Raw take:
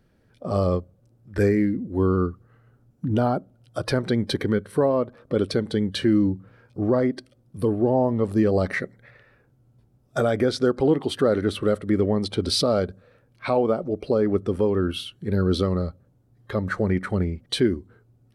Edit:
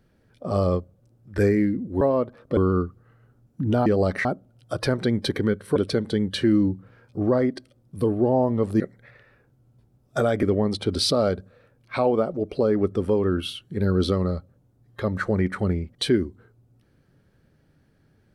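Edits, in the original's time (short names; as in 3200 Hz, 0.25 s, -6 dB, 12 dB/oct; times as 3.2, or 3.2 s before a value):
4.81–5.37 move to 2.01
8.41–8.8 move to 3.3
10.43–11.94 cut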